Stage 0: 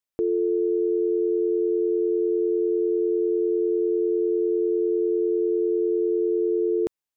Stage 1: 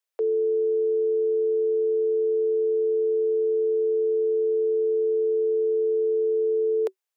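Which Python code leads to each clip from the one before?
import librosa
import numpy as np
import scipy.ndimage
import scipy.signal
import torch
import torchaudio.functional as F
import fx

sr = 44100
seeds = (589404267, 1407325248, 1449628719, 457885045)

y = scipy.signal.sosfilt(scipy.signal.cheby1(8, 1.0, 380.0, 'highpass', fs=sr, output='sos'), x)
y = F.gain(torch.from_numpy(y), 3.0).numpy()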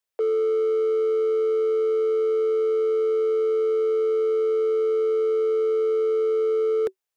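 y = np.clip(10.0 ** (22.0 / 20.0) * x, -1.0, 1.0) / 10.0 ** (22.0 / 20.0)
y = fx.low_shelf(y, sr, hz=280.0, db=7.5)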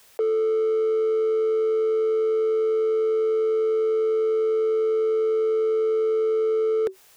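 y = fx.env_flatten(x, sr, amount_pct=50)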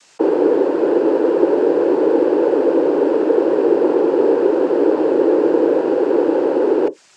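y = fx.noise_vocoder(x, sr, seeds[0], bands=8)
y = F.gain(torch.from_numpy(y), 7.0).numpy()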